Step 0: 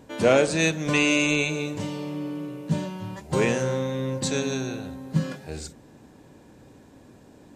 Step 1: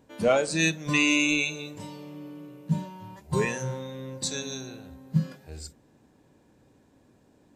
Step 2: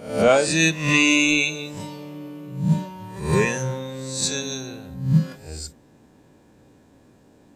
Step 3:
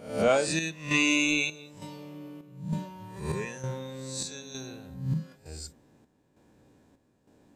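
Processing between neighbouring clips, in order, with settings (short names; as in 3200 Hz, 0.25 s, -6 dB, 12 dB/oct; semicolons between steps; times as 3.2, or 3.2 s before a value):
spectral noise reduction 10 dB
spectral swells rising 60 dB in 0.54 s; gain +5 dB
chopper 1.1 Hz, depth 60%, duty 65%; gain -7 dB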